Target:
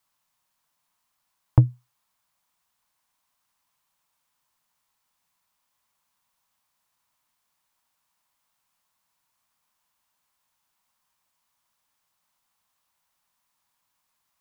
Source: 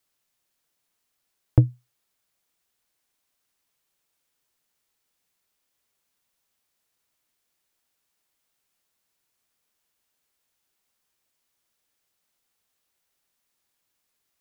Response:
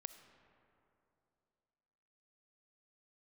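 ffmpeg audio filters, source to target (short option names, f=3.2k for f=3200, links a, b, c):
-af "equalizer=f=160:t=o:w=0.67:g=3,equalizer=f=400:t=o:w=0.67:g=-9,equalizer=f=1k:t=o:w=0.67:g=11"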